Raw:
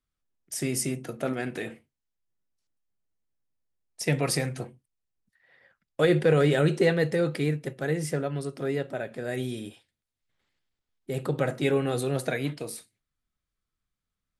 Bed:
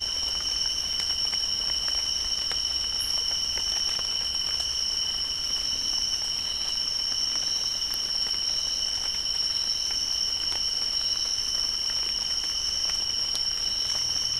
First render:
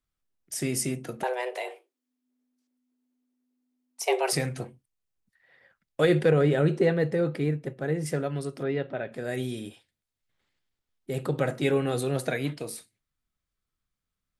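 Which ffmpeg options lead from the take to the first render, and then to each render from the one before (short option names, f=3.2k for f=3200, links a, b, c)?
-filter_complex "[0:a]asettb=1/sr,asplit=3[a][b][c];[a]atrim=end=1.234[d];[b]atrim=start=1.23:end=4.33,asetpts=PTS-STARTPTS,afade=t=in:d=0.004:c=qsin,afade=t=out:st=3.096:d=0.004:c=qsin,afreqshift=250[e];[c]atrim=start=4.326[f];[d][e]acrossfade=d=0.004:c1=hsin:c2=qsin[g];[g][f]acrossfade=d=0.004:c1=qsin:c2=hsin,asettb=1/sr,asplit=3[h][i][j];[h]atrim=end=6.304[k];[i]atrim=start=6.3:end=8.06,asetpts=PTS-STARTPTS,afade=t=in:d=0.004:c=qsin,afade=t=out:st=1.756:d=0.004:c=qsin,highshelf=f=2.3k:g=-10.5[l];[j]atrim=start=8.056[m];[k][l]acrossfade=d=0.004:c1=hsin:c2=qsin[n];[n][m]acrossfade=d=0.004:c1=qsin:c2=hsin,asplit=3[o][p][q];[o]afade=t=out:st=8.62:d=0.02[r];[p]lowpass=f=3.9k:w=0.5412,lowpass=f=3.9k:w=1.3066,afade=t=in:st=8.62:d=0.02,afade=t=out:st=9.11:d=0.02[s];[q]afade=t=in:st=9.11:d=0.02[t];[r][s][t]amix=inputs=3:normalize=0"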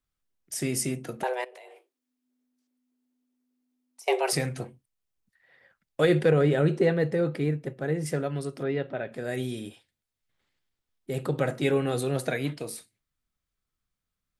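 -filter_complex "[0:a]asettb=1/sr,asplit=3[a][b][c];[a]atrim=end=1.444[d];[b]atrim=start=1.44:end=4.08,asetpts=PTS-STARTPTS,afade=t=in:d=0.004:c=qsin,afade=t=out:st=2.636:d=0.004:c=qsin,acompressor=threshold=-44dB:ratio=16:attack=3.2:release=140:knee=1:detection=peak[e];[c]atrim=start=4.076[f];[d][e]acrossfade=d=0.004:c1=hsin:c2=qsin[g];[g][f]acrossfade=d=0.004:c1=qsin:c2=hsin"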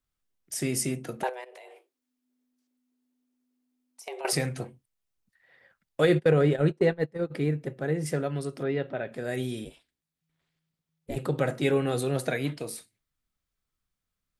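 -filter_complex "[0:a]asettb=1/sr,asplit=3[a][b][c];[a]atrim=end=1.294[d];[b]atrim=start=1.29:end=4.25,asetpts=PTS-STARTPTS,afade=t=in:d=0.004:c=qsin,afade=t=out:st=2.956:d=0.004:c=qsin,acompressor=threshold=-36dB:ratio=5:attack=3.2:release=140:knee=1:detection=peak[e];[c]atrim=start=4.246[f];[d][e]acrossfade=d=0.004:c1=hsin:c2=qsin[g];[g][f]acrossfade=d=0.004:c1=qsin:c2=hsin,asplit=3[h][i][j];[h]afade=t=out:st=6.07:d=0.02[k];[i]agate=range=-26dB:threshold=-24dB:ratio=16:release=100:detection=peak,afade=t=in:st=6.07:d=0.02,afade=t=out:st=7.3:d=0.02[l];[j]afade=t=in:st=7.3:d=0.02[m];[k][l][m]amix=inputs=3:normalize=0,asplit=3[n][o][p];[n]afade=t=out:st=9.64:d=0.02[q];[o]aeval=exprs='val(0)*sin(2*PI*160*n/s)':c=same,afade=t=in:st=9.64:d=0.02,afade=t=out:st=11.15:d=0.02[r];[p]afade=t=in:st=11.15:d=0.02[s];[q][r][s]amix=inputs=3:normalize=0"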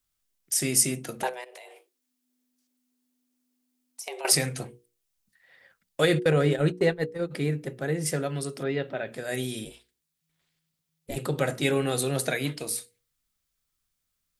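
-af "highshelf=f=3k:g=10,bandreject=f=60:t=h:w=6,bandreject=f=120:t=h:w=6,bandreject=f=180:t=h:w=6,bandreject=f=240:t=h:w=6,bandreject=f=300:t=h:w=6,bandreject=f=360:t=h:w=6,bandreject=f=420:t=h:w=6,bandreject=f=480:t=h:w=6"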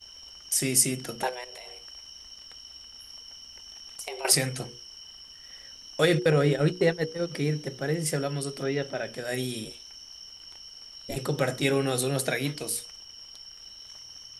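-filter_complex "[1:a]volume=-18.5dB[a];[0:a][a]amix=inputs=2:normalize=0"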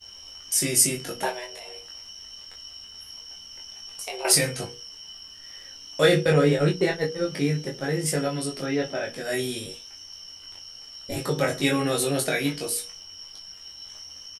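-filter_complex "[0:a]asplit=2[a][b];[b]adelay=21,volume=-2dB[c];[a][c]amix=inputs=2:normalize=0,aecho=1:1:11|38:0.501|0.224"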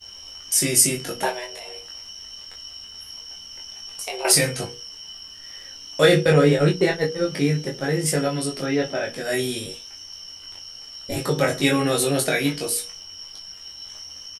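-af "volume=3.5dB,alimiter=limit=-3dB:level=0:latency=1"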